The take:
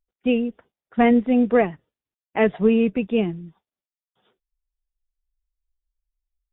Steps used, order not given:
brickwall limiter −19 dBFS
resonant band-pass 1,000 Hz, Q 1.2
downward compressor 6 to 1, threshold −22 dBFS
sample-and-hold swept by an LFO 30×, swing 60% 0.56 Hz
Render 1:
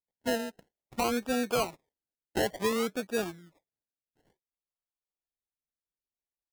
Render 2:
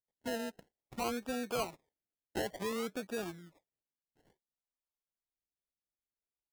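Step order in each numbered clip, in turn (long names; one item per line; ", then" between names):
resonant band-pass, then downward compressor, then brickwall limiter, then sample-and-hold swept by an LFO
downward compressor, then brickwall limiter, then resonant band-pass, then sample-and-hold swept by an LFO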